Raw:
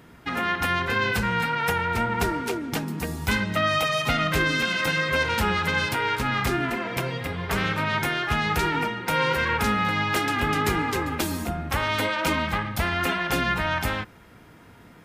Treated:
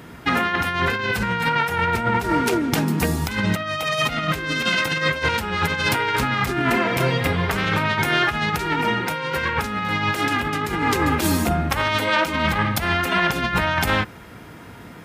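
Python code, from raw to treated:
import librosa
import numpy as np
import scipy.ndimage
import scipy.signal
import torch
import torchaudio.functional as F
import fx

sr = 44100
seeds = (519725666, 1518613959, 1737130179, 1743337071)

y = scipy.signal.sosfilt(scipy.signal.butter(2, 46.0, 'highpass', fs=sr, output='sos'), x)
y = fx.over_compress(y, sr, threshold_db=-27.0, ratio=-0.5)
y = y * librosa.db_to_amplitude(6.5)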